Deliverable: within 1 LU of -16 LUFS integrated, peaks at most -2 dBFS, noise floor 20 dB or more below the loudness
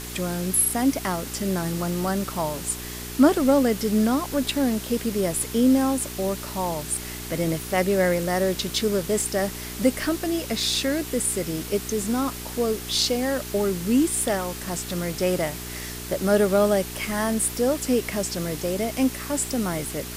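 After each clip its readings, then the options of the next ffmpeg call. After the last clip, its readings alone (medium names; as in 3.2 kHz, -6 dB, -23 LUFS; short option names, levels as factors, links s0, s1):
hum 60 Hz; highest harmonic 420 Hz; hum level -36 dBFS; noise floor -35 dBFS; noise floor target -44 dBFS; loudness -24.0 LUFS; peak level -5.5 dBFS; loudness target -16.0 LUFS
-> -af "bandreject=f=60:t=h:w=4,bandreject=f=120:t=h:w=4,bandreject=f=180:t=h:w=4,bandreject=f=240:t=h:w=4,bandreject=f=300:t=h:w=4,bandreject=f=360:t=h:w=4,bandreject=f=420:t=h:w=4"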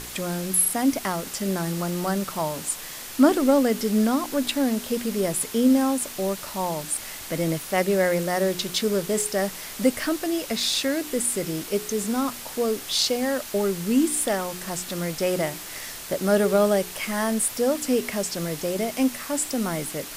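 hum not found; noise floor -38 dBFS; noise floor target -45 dBFS
-> -af "afftdn=nr=7:nf=-38"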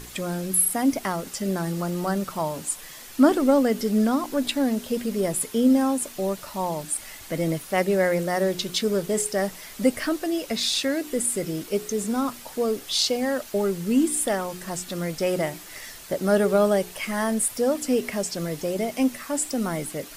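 noise floor -42 dBFS; noise floor target -45 dBFS
-> -af "afftdn=nr=6:nf=-42"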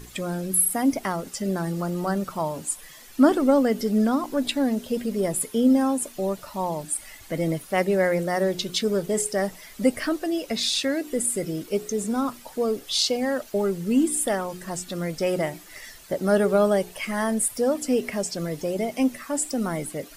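noise floor -46 dBFS; loudness -24.5 LUFS; peak level -5.5 dBFS; loudness target -16.0 LUFS
-> -af "volume=2.66,alimiter=limit=0.794:level=0:latency=1"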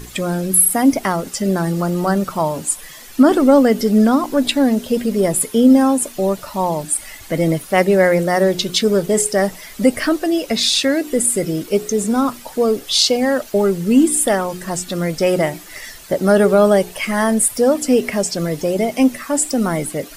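loudness -16.5 LUFS; peak level -2.0 dBFS; noise floor -38 dBFS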